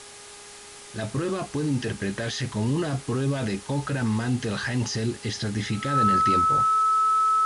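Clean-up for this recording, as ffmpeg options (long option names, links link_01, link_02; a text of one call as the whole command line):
ffmpeg -i in.wav -af "bandreject=frequency=409.7:width_type=h:width=4,bandreject=frequency=819.4:width_type=h:width=4,bandreject=frequency=1229.1:width_type=h:width=4,bandreject=frequency=1638.8:width_type=h:width=4,bandreject=frequency=2048.5:width_type=h:width=4,bandreject=frequency=1300:width=30,afwtdn=0.0079" out.wav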